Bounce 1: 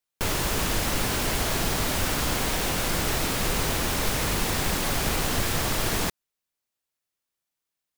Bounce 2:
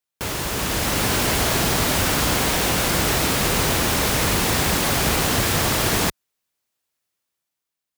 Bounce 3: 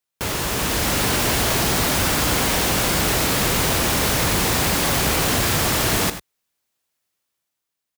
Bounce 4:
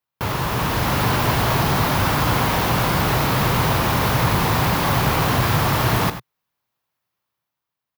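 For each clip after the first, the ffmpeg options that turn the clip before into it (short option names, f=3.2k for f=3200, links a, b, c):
-af "highpass=52,dynaudnorm=f=170:g=9:m=6.5dB"
-filter_complex "[0:a]asplit=2[a][b];[b]aeval=exprs='(mod(6.31*val(0)+1,2)-1)/6.31':c=same,volume=-6dB[c];[a][c]amix=inputs=2:normalize=0,aecho=1:1:81|98:0.188|0.178,volume=-1.5dB"
-af "equalizer=f=125:t=o:w=1:g=10,equalizer=f=1k:t=o:w=1:g=8,equalizer=f=8k:t=o:w=1:g=-10,volume=-2dB"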